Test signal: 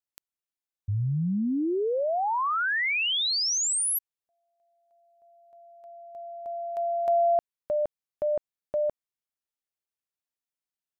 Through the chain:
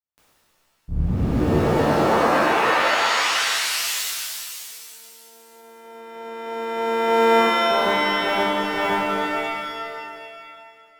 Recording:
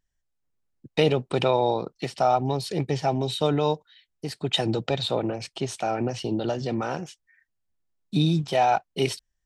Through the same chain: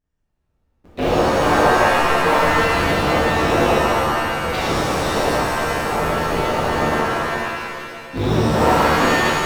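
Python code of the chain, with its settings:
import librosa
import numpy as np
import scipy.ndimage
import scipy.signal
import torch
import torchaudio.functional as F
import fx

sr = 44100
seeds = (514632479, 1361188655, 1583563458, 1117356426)

y = fx.cycle_switch(x, sr, every=3, mode='inverted')
y = fx.high_shelf(y, sr, hz=2600.0, db=-10.5)
y = fx.rev_shimmer(y, sr, seeds[0], rt60_s=2.2, semitones=7, shimmer_db=-2, drr_db=-10.5)
y = y * 10.0 ** (-5.5 / 20.0)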